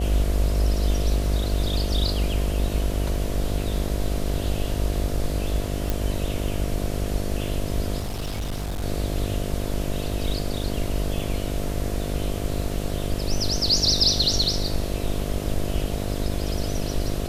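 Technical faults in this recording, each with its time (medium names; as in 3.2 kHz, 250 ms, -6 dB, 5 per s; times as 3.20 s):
buzz 50 Hz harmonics 14 -29 dBFS
5.90 s: pop
7.99–8.83 s: clipped -24.5 dBFS
11.19 s: dropout 3.1 ms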